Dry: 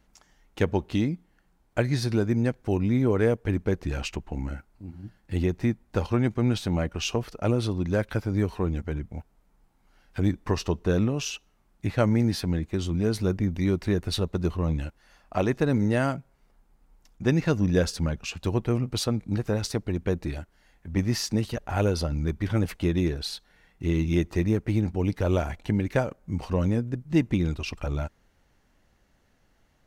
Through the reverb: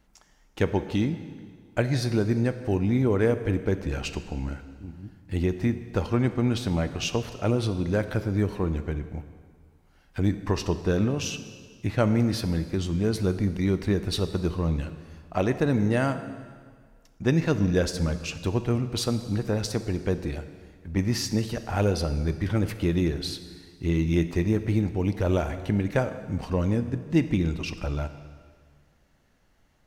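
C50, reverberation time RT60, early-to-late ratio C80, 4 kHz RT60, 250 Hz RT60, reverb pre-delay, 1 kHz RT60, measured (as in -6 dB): 11.0 dB, 1.8 s, 12.0 dB, 1.7 s, 1.7 s, 14 ms, 1.8 s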